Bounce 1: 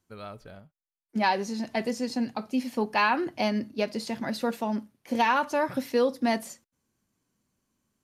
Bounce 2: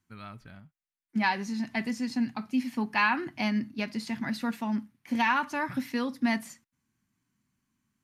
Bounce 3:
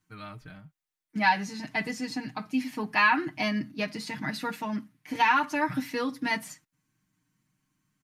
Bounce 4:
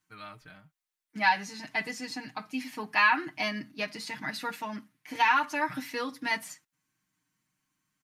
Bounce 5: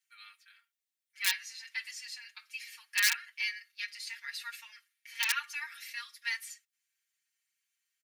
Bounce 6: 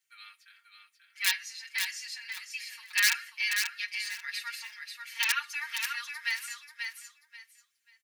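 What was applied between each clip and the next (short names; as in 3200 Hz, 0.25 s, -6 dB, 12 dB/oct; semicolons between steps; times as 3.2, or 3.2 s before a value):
graphic EQ 125/250/500/1000/2000 Hz +6/+6/-12/+3/+7 dB; gain -4.5 dB
comb 6.5 ms, depth 97%
low shelf 340 Hz -11 dB
wrapped overs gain 14 dB; inverse Chebyshev high-pass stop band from 520 Hz, stop band 60 dB; comb 4.3 ms, depth 68%; gain -3 dB
in parallel at -8 dB: overloaded stage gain 19.5 dB; on the sum: feedback echo 0.537 s, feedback 23%, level -5.5 dB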